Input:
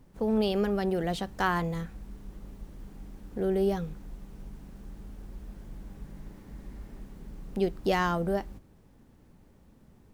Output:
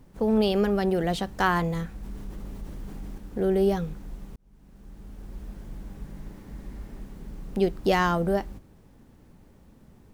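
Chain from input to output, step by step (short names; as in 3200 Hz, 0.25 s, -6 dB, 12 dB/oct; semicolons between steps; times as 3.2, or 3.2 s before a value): 2.03–3.18 fast leveller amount 50%; 4.36–5.41 fade in; gain +4 dB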